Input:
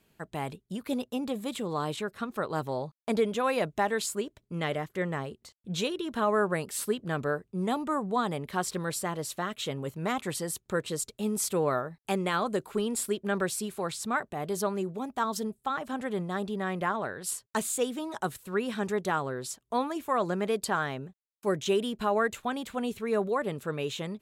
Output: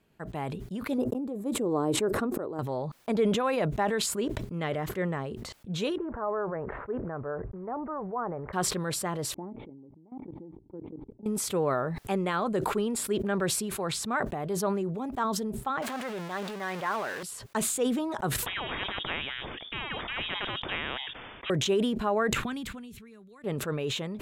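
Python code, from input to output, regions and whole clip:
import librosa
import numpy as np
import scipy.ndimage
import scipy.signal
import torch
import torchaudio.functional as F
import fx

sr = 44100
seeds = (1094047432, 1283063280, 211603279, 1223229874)

y = fx.chain(x, sr, fx.curve_eq(hz=(200.0, 310.0, 3300.0, 8400.0), db=(0, 10, -12, 0)),
    fx.auto_swell(attack_ms=576.0), at=(0.98, 2.59))
y = fx.chain(y, sr, fx.block_float(bits=5),
    fx.bessel_lowpass(hz=960.0, order=8),
    fx.peak_eq(hz=210.0, db=-13.0, octaves=1.5), at=(5.98, 8.53))
y = fx.chain(y, sr, fx.formant_cascade(vowel='u'),
    fx.level_steps(step_db=20), at=(9.34, 11.26))
y = fx.chain(y, sr, fx.zero_step(step_db=-30.5),
    fx.highpass(hz=930.0, slope=6),
    fx.doppler_dist(depth_ms=0.15), at=(15.82, 17.23))
y = fx.chain(y, sr, fx.freq_invert(carrier_hz=3500),
    fx.spectral_comp(ratio=4.0), at=(18.46, 21.5))
y = fx.chain(y, sr, fx.tone_stack(knobs='6-0-2'),
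    fx.band_squash(depth_pct=100), at=(22.33, 23.44))
y = fx.high_shelf(y, sr, hz=3300.0, db=-9.5)
y = fx.sustainer(y, sr, db_per_s=30.0)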